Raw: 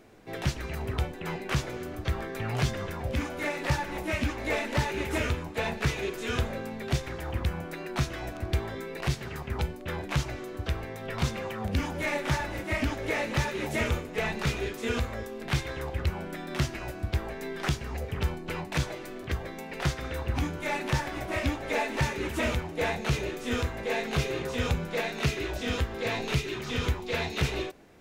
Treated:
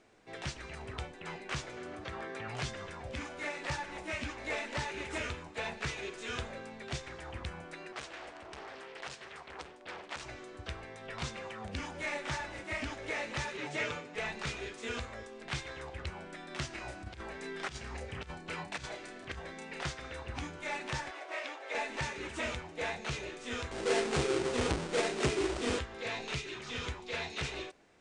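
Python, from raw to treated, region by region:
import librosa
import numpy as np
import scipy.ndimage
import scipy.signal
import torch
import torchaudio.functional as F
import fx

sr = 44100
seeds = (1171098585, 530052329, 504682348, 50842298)

y = fx.chain(x, sr, fx.highpass(hz=150.0, slope=6),
    fx.high_shelf(hz=3400.0, db=-7.0),
    fx.env_flatten(amount_pct=50), at=(1.77, 2.48))
y = fx.chain(y, sr, fx.clip_hard(threshold_db=-26.5),
    fx.bass_treble(bass_db=-13, treble_db=-3),
    fx.doppler_dist(depth_ms=0.93), at=(7.92, 10.23))
y = fx.chain(y, sr, fx.bandpass_edges(low_hz=110.0, high_hz=6400.0),
    fx.comb(ms=6.8, depth=0.67), at=(13.57, 14.15))
y = fx.chain(y, sr, fx.doubler(ms=31.0, db=-5.0),
    fx.over_compress(threshold_db=-29.0, ratio=-0.5), at=(16.7, 19.83))
y = fx.chain(y, sr, fx.median_filter(points=5),
    fx.highpass(hz=400.0, slope=24),
    fx.high_shelf(hz=9400.0, db=-7.5), at=(21.11, 21.75))
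y = fx.chain(y, sr, fx.halfwave_hold(),
    fx.peak_eq(hz=360.0, db=9.5, octaves=0.78), at=(23.71, 25.79))
y = scipy.signal.sosfilt(scipy.signal.butter(12, 9400.0, 'lowpass', fs=sr, output='sos'), y)
y = fx.low_shelf(y, sr, hz=470.0, db=-8.5)
y = y * 10.0 ** (-5.0 / 20.0)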